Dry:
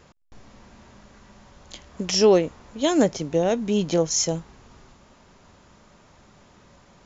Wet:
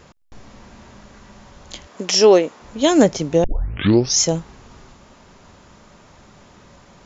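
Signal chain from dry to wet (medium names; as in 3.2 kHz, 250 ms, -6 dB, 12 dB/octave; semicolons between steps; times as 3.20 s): 1.87–2.62 s: high-pass 290 Hz 12 dB/octave; 3.44 s: tape start 0.75 s; trim +6 dB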